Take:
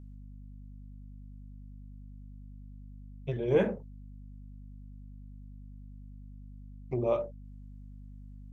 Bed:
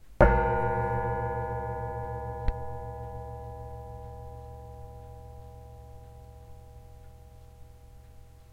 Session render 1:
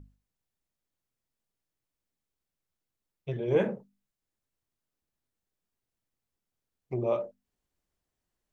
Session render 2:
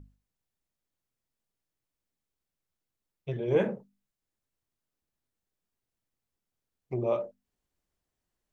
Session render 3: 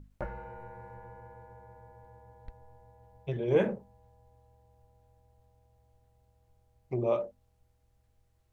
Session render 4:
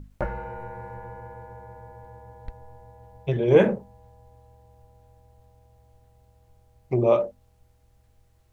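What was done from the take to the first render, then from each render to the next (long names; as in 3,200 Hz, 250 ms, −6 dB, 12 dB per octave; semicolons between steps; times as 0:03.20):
mains-hum notches 50/100/150/200/250 Hz
no processing that can be heard
mix in bed −19 dB
level +9 dB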